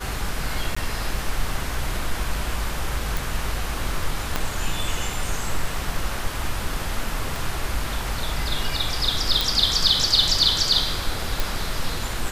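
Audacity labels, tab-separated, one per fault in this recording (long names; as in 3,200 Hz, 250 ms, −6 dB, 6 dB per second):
0.750000	0.770000	drop-out 15 ms
3.170000	3.170000	click
4.360000	4.360000	click −7 dBFS
7.360000	7.360000	click
9.410000	9.410000	click
11.400000	11.400000	click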